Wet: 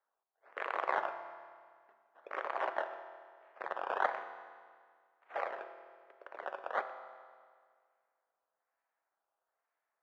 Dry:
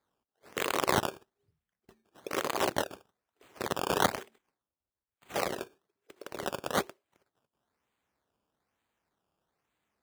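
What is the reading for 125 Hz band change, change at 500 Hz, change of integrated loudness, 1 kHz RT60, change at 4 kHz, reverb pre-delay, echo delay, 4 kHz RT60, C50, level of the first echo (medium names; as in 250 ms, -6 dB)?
under -30 dB, -6.5 dB, -6.5 dB, 1.9 s, -19.0 dB, 6 ms, no echo, 1.7 s, 9.5 dB, no echo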